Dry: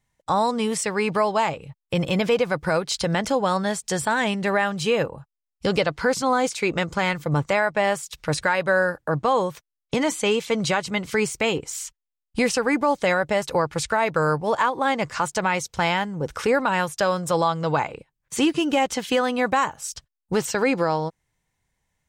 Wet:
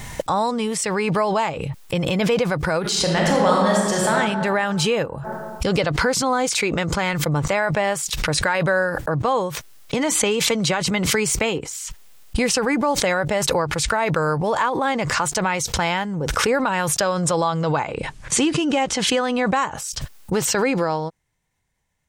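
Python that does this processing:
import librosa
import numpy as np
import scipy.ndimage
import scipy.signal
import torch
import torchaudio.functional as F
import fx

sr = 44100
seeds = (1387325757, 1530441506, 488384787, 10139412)

y = fx.reverb_throw(x, sr, start_s=2.81, length_s=1.31, rt60_s=1.5, drr_db=-3.0)
y = fx.band_squash(y, sr, depth_pct=70, at=(10.15, 11.69))
y = fx.lowpass(y, sr, hz=9400.0, slope=24, at=(17.01, 19.77))
y = fx.pre_swell(y, sr, db_per_s=23.0)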